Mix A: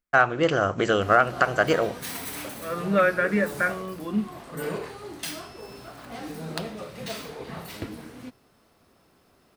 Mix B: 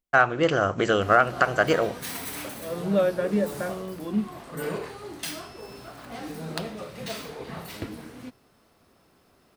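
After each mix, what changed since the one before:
second voice: add flat-topped bell 1,700 Hz −14 dB 1.3 octaves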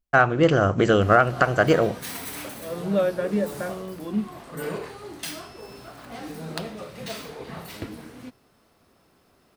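first voice: add low-shelf EQ 370 Hz +9.5 dB

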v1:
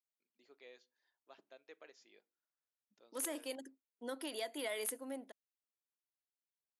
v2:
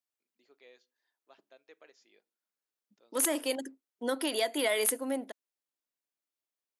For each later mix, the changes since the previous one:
second voice +11.5 dB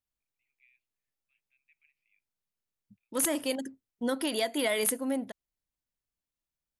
first voice: add flat-topped band-pass 2,400 Hz, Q 4.7
master: remove high-pass filter 280 Hz 24 dB per octave

